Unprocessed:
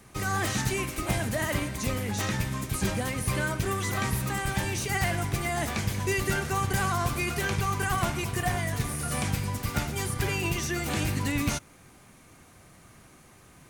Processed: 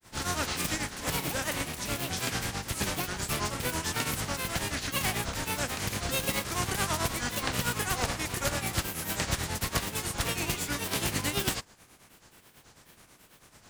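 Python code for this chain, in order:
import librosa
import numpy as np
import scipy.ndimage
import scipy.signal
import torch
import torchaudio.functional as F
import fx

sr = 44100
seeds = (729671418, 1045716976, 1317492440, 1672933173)

y = fx.spec_flatten(x, sr, power=0.58)
y = fx.granulator(y, sr, seeds[0], grain_ms=161.0, per_s=9.2, spray_ms=20.0, spread_st=7)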